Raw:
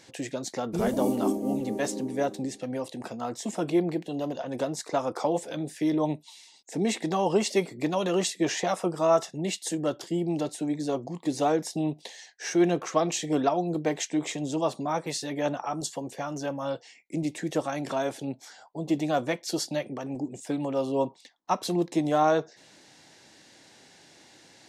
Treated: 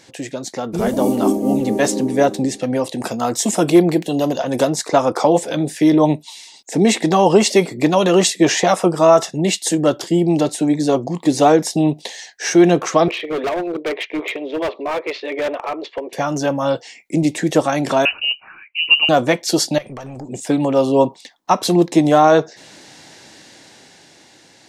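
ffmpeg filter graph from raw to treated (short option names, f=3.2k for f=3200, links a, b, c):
-filter_complex "[0:a]asettb=1/sr,asplit=3[a][b][c];[a]atrim=end=2.984[d];[b]atrim=start=2.98:end=4.7,asetpts=PTS-STARTPTS,afade=t=in:d=0.004:c=qsin,afade=t=out:st=1.716:d=0.004:c=qsin,highshelf=f=6.7k:g=11.5,asoftclip=type=hard:threshold=-16.5dB[e];[c]atrim=start=4.696[f];[d][e]acrossfade=d=0.004:c1=hsin:c2=qsin[g];[g][f]acrossfade=d=0.004:c1=qsin:c2=hsin,asettb=1/sr,asplit=3[h][i][j];[h]atrim=end=13.084[k];[i]atrim=start=13.08:end=16.13,asetpts=PTS-STARTPTS,afade=t=in:d=0.004:c=qsin,afade=t=out:st=3.046:d=0.004:c=qsin,adynamicsmooth=sensitivity=4:basefreq=2.6k,highpass=f=390:w=0.5412,highpass=f=390:w=1.3066,equalizer=f=400:t=q:w=4:g=4,equalizer=f=800:t=q:w=4:g=-9,equalizer=f=1.5k:t=q:w=4:g=-8,equalizer=f=2.3k:t=q:w=4:g=7,lowpass=f=3.5k:w=0.5412,lowpass=f=3.5k:w=1.3066,asoftclip=type=hard:threshold=-30.5dB[l];[j]atrim=start=16.126[m];[k][l]acrossfade=d=0.004:c1=hsin:c2=qsin[n];[n][m]acrossfade=d=0.004:c1=qsin:c2=hsin,asettb=1/sr,asplit=3[o][p][q];[o]atrim=end=18.054[r];[p]atrim=start=18.05:end=19.09,asetpts=PTS-STARTPTS,afade=t=in:d=0.004:c=qsin,afade=t=out:st=1.036:d=0.004:c=qsin,equalizer=f=930:w=5.2:g=-9.5,lowpass=f=2.6k:t=q:w=0.5098,lowpass=f=2.6k:t=q:w=0.6013,lowpass=f=2.6k:t=q:w=0.9,lowpass=f=2.6k:t=q:w=2.563,afreqshift=-3100[s];[q]atrim=start=19.086[t];[r][s]acrossfade=d=0.004:c1=hsin:c2=qsin[u];[u][t]acrossfade=d=0.004:c1=qsin:c2=hsin,asettb=1/sr,asplit=3[v][w][x];[v]atrim=end=19.784[y];[w]atrim=start=19.78:end=20.29,asetpts=PTS-STARTPTS,afade=t=in:d=0.004:c=qsin,afade=t=out:st=0.506:d=0.004:c=qsin,equalizer=f=300:w=1.2:g=-11.5,acompressor=threshold=-38dB:ratio=6:attack=3.2:release=140:knee=1:detection=peak,aeval=exprs='(tanh(63.1*val(0)+0.3)-tanh(0.3))/63.1':c=same[z];[x]atrim=start=20.286[aa];[y][z]acrossfade=d=0.004:c1=hsin:c2=qsin[ab];[ab][aa]acrossfade=d=0.004:c1=qsin:c2=hsin,dynaudnorm=f=200:g=13:m=7dB,alimiter=level_in=7dB:limit=-1dB:release=50:level=0:latency=1,volume=-1dB"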